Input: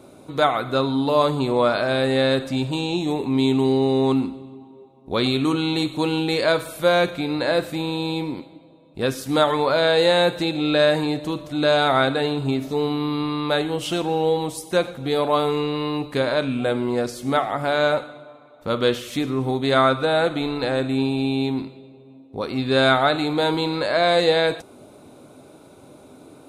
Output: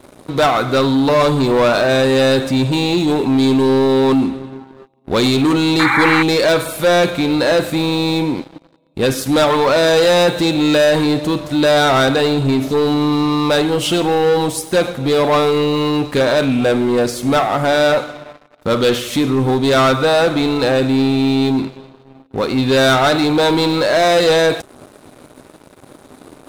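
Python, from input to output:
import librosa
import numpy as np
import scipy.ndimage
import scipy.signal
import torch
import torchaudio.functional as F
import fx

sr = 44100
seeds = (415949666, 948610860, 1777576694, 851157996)

y = fx.leveller(x, sr, passes=3)
y = fx.spec_paint(y, sr, seeds[0], shape='noise', start_s=5.79, length_s=0.44, low_hz=780.0, high_hz=2400.0, level_db=-14.0)
y = y * 10.0 ** (-1.0 / 20.0)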